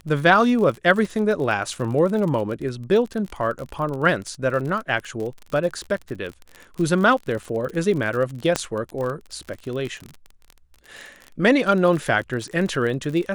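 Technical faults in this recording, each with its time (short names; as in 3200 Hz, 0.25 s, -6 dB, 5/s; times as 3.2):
crackle 40/s -28 dBFS
8.56 pop -6 dBFS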